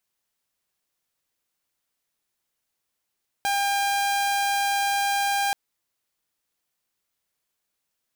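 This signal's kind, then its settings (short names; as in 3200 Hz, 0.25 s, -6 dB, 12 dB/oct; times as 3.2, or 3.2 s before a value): tone saw 801 Hz -19 dBFS 2.08 s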